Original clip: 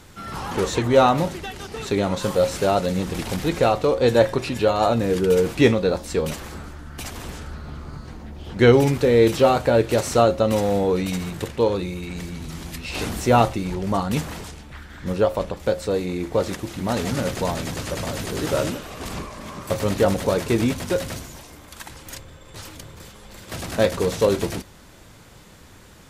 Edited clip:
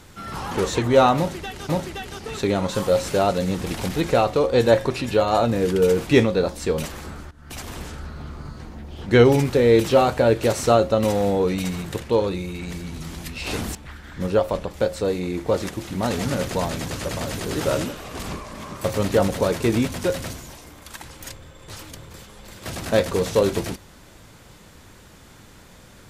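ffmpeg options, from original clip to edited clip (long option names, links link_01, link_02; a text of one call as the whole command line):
ffmpeg -i in.wav -filter_complex "[0:a]asplit=4[link_01][link_02][link_03][link_04];[link_01]atrim=end=1.692[link_05];[link_02]atrim=start=1.168:end=6.79,asetpts=PTS-STARTPTS,afade=type=out:start_time=5.618:duration=0.004:curve=hsin:silence=0.11885[link_06];[link_03]atrim=start=6.79:end=13.232,asetpts=PTS-STARTPTS,afade=type=in:duration=0.32:silence=0.11885[link_07];[link_04]atrim=start=14.608[link_08];[link_06][link_07]concat=n=2:v=0:a=1[link_09];[link_05][link_09]acrossfade=duration=0.004:curve1=hsin:curve2=hsin[link_10];[link_10][link_08]acrossfade=duration=0.004:curve1=hsin:curve2=hsin" out.wav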